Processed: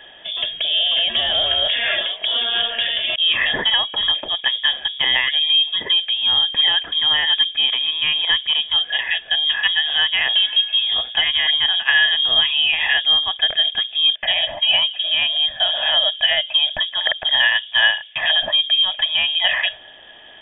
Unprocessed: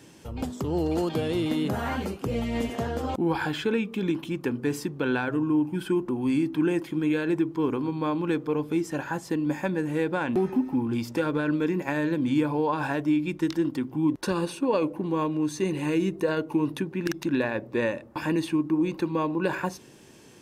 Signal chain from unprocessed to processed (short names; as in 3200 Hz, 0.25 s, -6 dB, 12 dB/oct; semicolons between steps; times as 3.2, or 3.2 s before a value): inverted band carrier 3500 Hz; small resonant body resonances 620/1700 Hz, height 16 dB, ringing for 25 ms; gain +6.5 dB